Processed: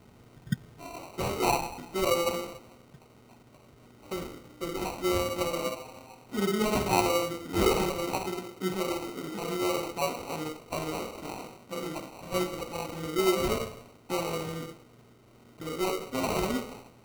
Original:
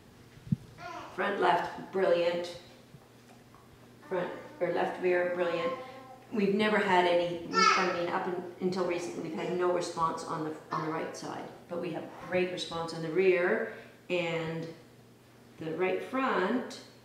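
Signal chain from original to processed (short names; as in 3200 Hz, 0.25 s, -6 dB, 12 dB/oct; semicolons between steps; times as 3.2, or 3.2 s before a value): 4.14–4.85 band shelf 810 Hz -9.5 dB; sample-and-hold 26×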